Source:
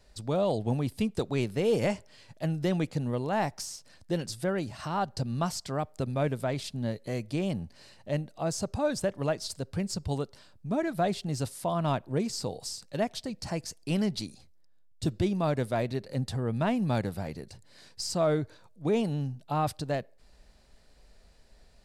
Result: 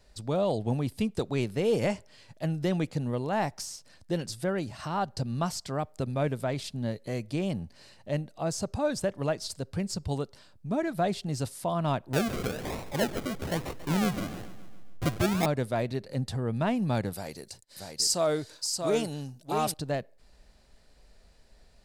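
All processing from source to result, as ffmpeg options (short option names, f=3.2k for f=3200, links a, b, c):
-filter_complex "[0:a]asettb=1/sr,asplit=3[a][b][c];[a]atrim=end=12.134[d];[b]atrim=start=12.13:end=15.46,asetpts=PTS-STARTPTS,afade=t=in:d=0.004:c=qsin,afade=t=out:st=3.326:d=0.004:c=qsin,aeval=exprs='val(0)+0.5*0.0158*sgn(val(0))':c=same,acrusher=samples=39:mix=1:aa=0.000001:lfo=1:lforange=23.4:lforate=1.1,aecho=1:1:139|278|417|556|695|834:0.2|0.112|0.0626|0.035|0.0196|0.011,atrim=end_sample=146853[e];[c]atrim=start=15.456[f];[d][e]acrossfade=d=0.004:c1=hsin:c2=qsin[g];[g][f]acrossfade=d=0.004:c1=qsin:c2=hsin,asettb=1/sr,asplit=3[h][i][j];[h]atrim=end=17.134[k];[i]atrim=start=17.13:end=19.74,asetpts=PTS-STARTPTS,afade=t=in:d=0.004:c=qsin,afade=t=out:st=2.606:d=0.004:c=qsin,bass=f=250:g=-8,treble=f=4k:g=11,agate=range=-27dB:threshold=-58dB:ratio=16:release=100:detection=peak,aecho=1:1:633:0.562,atrim=end_sample=115101[l];[j]atrim=start=19.736[m];[k][l]acrossfade=d=0.004:c1=hsin:c2=qsin[n];[n][m]acrossfade=d=0.004:c1=qsin:c2=hsin"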